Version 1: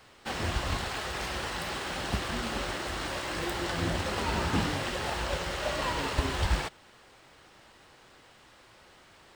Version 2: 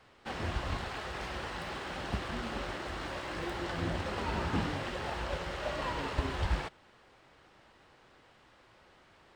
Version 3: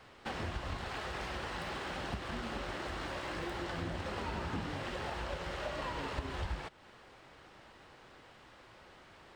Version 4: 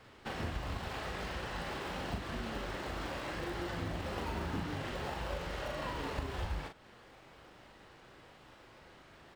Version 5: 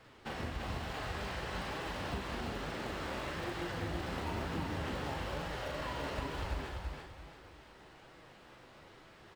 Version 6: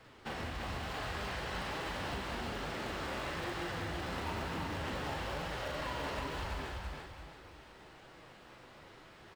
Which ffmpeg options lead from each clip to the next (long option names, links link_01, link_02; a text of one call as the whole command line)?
ffmpeg -i in.wav -af "lowpass=frequency=2800:poles=1,volume=-3.5dB" out.wav
ffmpeg -i in.wav -af "acompressor=threshold=-42dB:ratio=3,volume=4dB" out.wav
ffmpeg -i in.wav -filter_complex "[0:a]asplit=2[link_01][link_02];[link_02]acrusher=samples=28:mix=1:aa=0.000001:lfo=1:lforange=16.8:lforate=0.91,volume=-10dB[link_03];[link_01][link_03]amix=inputs=2:normalize=0,asplit=2[link_04][link_05];[link_05]adelay=40,volume=-5.5dB[link_06];[link_04][link_06]amix=inputs=2:normalize=0,volume=-2dB" out.wav
ffmpeg -i in.wav -af "aecho=1:1:340|680|1020|1360:0.631|0.215|0.0729|0.0248,flanger=delay=6:depth=10:regen=61:speed=1.1:shape=sinusoidal,volume=3dB" out.wav
ffmpeg -i in.wav -filter_complex "[0:a]acrossover=split=620[link_01][link_02];[link_01]asoftclip=type=tanh:threshold=-37dB[link_03];[link_02]aecho=1:1:189:0.398[link_04];[link_03][link_04]amix=inputs=2:normalize=0,volume=1dB" out.wav